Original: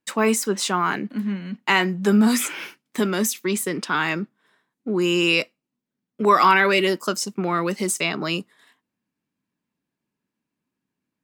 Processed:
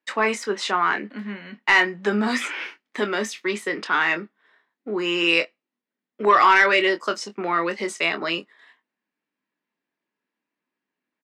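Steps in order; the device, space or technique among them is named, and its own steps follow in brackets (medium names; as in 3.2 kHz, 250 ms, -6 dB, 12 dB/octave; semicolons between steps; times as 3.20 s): intercom (band-pass 370–4000 Hz; peaking EQ 1.9 kHz +5.5 dB 0.33 oct; saturation -7 dBFS, distortion -20 dB; doubling 24 ms -9 dB); trim +1 dB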